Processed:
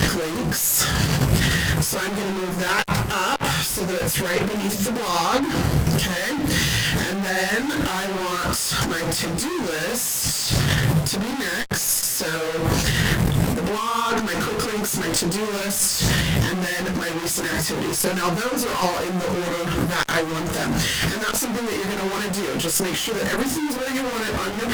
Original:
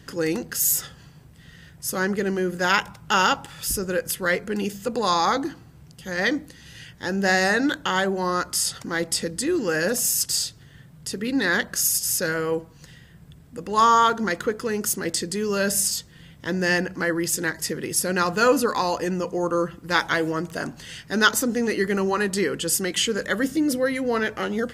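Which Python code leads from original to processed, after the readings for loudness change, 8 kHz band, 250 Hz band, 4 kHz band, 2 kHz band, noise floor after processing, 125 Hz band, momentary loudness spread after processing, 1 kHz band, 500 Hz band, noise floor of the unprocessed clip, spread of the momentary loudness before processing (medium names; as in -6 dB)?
+1.5 dB, +2.5 dB, +2.5 dB, +4.5 dB, +1.0 dB, -26 dBFS, +11.5 dB, 5 LU, -1.0 dB, -0.5 dB, -49 dBFS, 10 LU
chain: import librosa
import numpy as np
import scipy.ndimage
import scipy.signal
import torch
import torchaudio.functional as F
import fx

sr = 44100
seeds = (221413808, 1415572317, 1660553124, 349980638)

y = fx.gate_flip(x, sr, shuts_db=-10.0, range_db=-26)
y = fx.fuzz(y, sr, gain_db=48.0, gate_db=-53.0)
y = fx.over_compress(y, sr, threshold_db=-21.0, ratio=-1.0)
y = fx.detune_double(y, sr, cents=51)
y = y * 10.0 ** (2.0 / 20.0)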